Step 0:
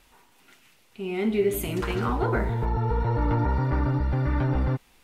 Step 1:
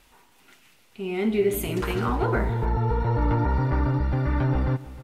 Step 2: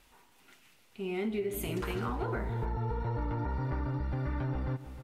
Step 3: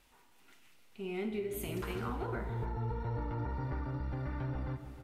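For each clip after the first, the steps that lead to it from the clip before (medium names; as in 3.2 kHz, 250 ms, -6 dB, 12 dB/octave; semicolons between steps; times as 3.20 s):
delay 312 ms -17 dB; trim +1 dB
compression, threshold -25 dBFS, peak gain reduction 8 dB; trim -5 dB
Schroeder reverb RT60 1.2 s, combs from 26 ms, DRR 9.5 dB; trim -4 dB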